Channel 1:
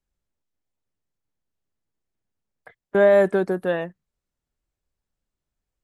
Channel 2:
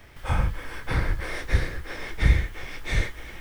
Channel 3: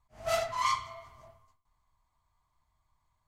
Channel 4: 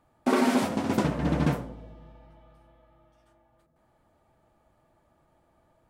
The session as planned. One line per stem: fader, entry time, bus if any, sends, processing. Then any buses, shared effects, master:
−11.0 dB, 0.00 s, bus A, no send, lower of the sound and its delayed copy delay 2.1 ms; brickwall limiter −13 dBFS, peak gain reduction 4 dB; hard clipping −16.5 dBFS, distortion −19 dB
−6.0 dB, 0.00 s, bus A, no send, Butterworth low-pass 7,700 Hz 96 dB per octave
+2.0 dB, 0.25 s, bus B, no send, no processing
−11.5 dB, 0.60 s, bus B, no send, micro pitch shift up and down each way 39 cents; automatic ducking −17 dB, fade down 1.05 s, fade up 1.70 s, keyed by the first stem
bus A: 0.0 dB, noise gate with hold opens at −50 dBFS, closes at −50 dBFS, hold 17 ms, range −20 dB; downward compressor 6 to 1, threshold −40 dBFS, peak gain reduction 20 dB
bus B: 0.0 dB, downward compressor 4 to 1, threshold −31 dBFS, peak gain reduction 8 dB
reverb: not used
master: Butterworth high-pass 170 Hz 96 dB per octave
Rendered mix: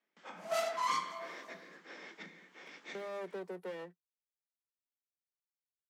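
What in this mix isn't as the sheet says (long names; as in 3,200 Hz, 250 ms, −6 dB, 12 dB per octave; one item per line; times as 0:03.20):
stem 2 −6.0 dB → −13.0 dB
stem 4: muted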